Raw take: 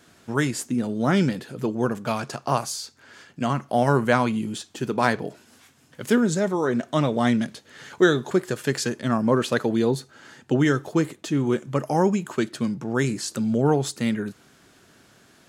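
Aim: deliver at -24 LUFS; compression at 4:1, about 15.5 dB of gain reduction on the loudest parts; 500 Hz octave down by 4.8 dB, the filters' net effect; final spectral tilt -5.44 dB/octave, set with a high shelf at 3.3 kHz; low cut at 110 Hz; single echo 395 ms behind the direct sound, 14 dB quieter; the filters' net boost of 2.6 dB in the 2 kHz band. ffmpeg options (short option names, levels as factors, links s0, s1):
-af "highpass=110,equalizer=f=500:t=o:g=-6.5,equalizer=f=2000:t=o:g=6.5,highshelf=f=3300:g=-9,acompressor=threshold=0.02:ratio=4,aecho=1:1:395:0.2,volume=4.47"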